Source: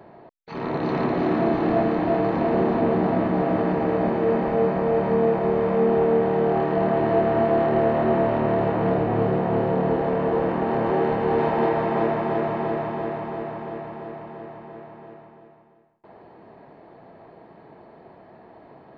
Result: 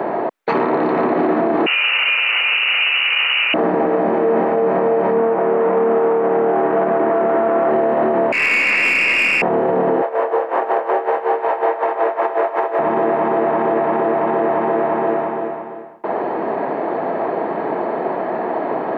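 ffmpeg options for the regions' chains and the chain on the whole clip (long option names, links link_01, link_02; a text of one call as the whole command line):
ffmpeg -i in.wav -filter_complex "[0:a]asettb=1/sr,asplit=3[link_01][link_02][link_03];[link_01]atrim=end=1.664[link_04];[link_02]atrim=start=1.66:end=3.54,asetpts=PTS-STARTPTS,afade=type=in:duration=0.004:curve=qsin,afade=type=out:start_time=1.876:duration=0.004:curve=qsin,aemphasis=mode=production:type=75kf,lowpass=frequency=2600:width_type=q:width=0.5098,lowpass=frequency=2600:width_type=q:width=0.6013,lowpass=frequency=2600:width_type=q:width=0.9,lowpass=frequency=2600:width_type=q:width=2.563,afreqshift=-3100[link_05];[link_03]atrim=start=3.536[link_06];[link_04][link_05]acrossfade=duration=0.004:curve1=hsin:curve2=qsin[link_07];[link_07][link_06]acrossfade=duration=0.004:curve1=qsin:curve2=hsin,asettb=1/sr,asplit=3[link_08][link_09][link_10];[link_08]atrim=end=5.184[link_11];[link_09]atrim=start=5.18:end=7.71,asetpts=PTS-STARTPTS,afade=type=in:duration=0.004:curve=qsin,afade=type=out:start_time=2.526:duration=0.004:curve=qsin,aeval=exprs='clip(val(0),-1,0.0794)':channel_layout=same,highpass=140,lowpass=2400[link_12];[link_10]atrim=start=7.706[link_13];[link_11][link_12]acrossfade=duration=0.004:curve1=hsin:curve2=qsin[link_14];[link_14][link_13]acrossfade=duration=0.004:curve1=qsin:curve2=hsin,asettb=1/sr,asplit=3[link_15][link_16][link_17];[link_15]atrim=end=8.324[link_18];[link_16]atrim=start=8.32:end=9.42,asetpts=PTS-STARTPTS,afade=type=in:duration=0.004:curve=qsin,afade=type=out:start_time=1.096:duration=0.004:curve=qsin,lowpass=frequency=2500:width_type=q:width=0.5098,lowpass=frequency=2500:width_type=q:width=0.6013,lowpass=frequency=2500:width_type=q:width=0.9,lowpass=frequency=2500:width_type=q:width=2.563,afreqshift=-2900,aeval=exprs='(tanh(11.2*val(0)+0.45)-tanh(0.45))/11.2':channel_layout=same[link_19];[link_17]atrim=start=9.416[link_20];[link_18][link_19]acrossfade=duration=0.004:curve1=hsin:curve2=qsin[link_21];[link_21][link_20]acrossfade=duration=0.004:curve1=qsin:curve2=hsin,asettb=1/sr,asplit=3[link_22][link_23][link_24];[link_22]atrim=end=10.024[link_25];[link_23]atrim=start=10.02:end=12.79,asetpts=PTS-STARTPTS,afade=type=in:duration=0.004:curve=qsin,afade=type=out:start_time=2.766:duration=0.004:curve=qsin,highpass=frequency=450:width=0.5412,highpass=frequency=450:width=1.3066,aeval=exprs='sgn(val(0))*max(abs(val(0))-0.00211,0)':channel_layout=same,aeval=exprs='val(0)*pow(10,-19*(0.5-0.5*cos(2*PI*5.4*n/s))/20)':channel_layout=same[link_26];[link_24]atrim=start=12.786[link_27];[link_25][link_26]acrossfade=duration=0.004:curve1=hsin:curve2=qsin[link_28];[link_28][link_27]acrossfade=duration=0.004:curve1=qsin:curve2=hsin,acrossover=split=230 2400:gain=0.0708 1 0.178[link_29][link_30][link_31];[link_29][link_30][link_31]amix=inputs=3:normalize=0,acompressor=threshold=-39dB:ratio=5,alimiter=level_in=35dB:limit=-1dB:release=50:level=0:latency=1,volume=-7.5dB" out.wav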